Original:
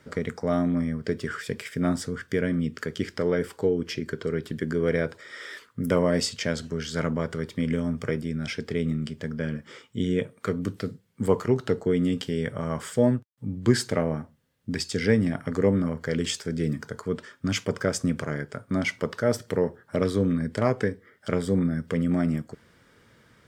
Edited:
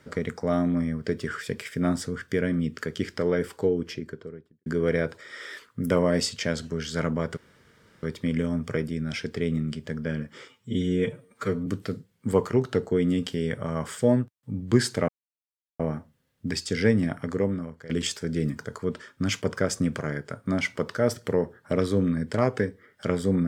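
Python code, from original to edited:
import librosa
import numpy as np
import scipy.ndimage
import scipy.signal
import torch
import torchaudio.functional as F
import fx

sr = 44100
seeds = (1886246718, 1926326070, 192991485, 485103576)

y = fx.studio_fade_out(x, sr, start_s=3.61, length_s=1.05)
y = fx.edit(y, sr, fx.insert_room_tone(at_s=7.37, length_s=0.66),
    fx.stretch_span(start_s=9.82, length_s=0.79, factor=1.5),
    fx.insert_silence(at_s=14.03, length_s=0.71),
    fx.fade_out_to(start_s=15.34, length_s=0.79, floor_db=-17.0), tone=tone)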